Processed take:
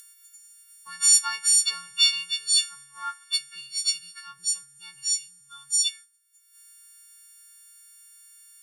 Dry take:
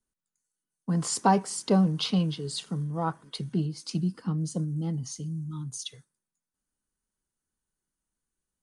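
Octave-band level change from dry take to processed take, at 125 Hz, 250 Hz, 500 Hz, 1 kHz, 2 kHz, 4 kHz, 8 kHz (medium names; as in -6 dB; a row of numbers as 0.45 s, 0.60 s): under -35 dB, under -40 dB, under -35 dB, -8.5 dB, +8.5 dB, +13.5 dB, +15.5 dB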